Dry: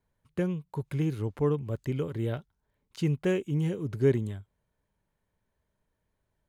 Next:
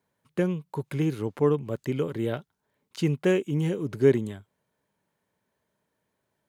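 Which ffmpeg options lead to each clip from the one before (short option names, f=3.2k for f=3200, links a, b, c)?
-af "highpass=170,volume=5dB"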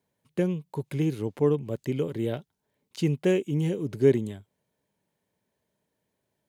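-af "equalizer=f=1.3k:t=o:w=0.96:g=-7.5"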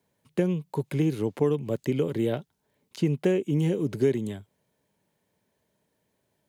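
-filter_complex "[0:a]acrossover=split=120|1900[a][b][c];[a]acompressor=threshold=-48dB:ratio=4[d];[b]acompressor=threshold=-25dB:ratio=4[e];[c]acompressor=threshold=-48dB:ratio=4[f];[d][e][f]amix=inputs=3:normalize=0,volume=4.5dB"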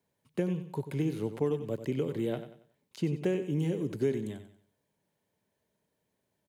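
-af "aecho=1:1:93|186|279|372:0.282|0.0986|0.0345|0.0121,volume=-6dB"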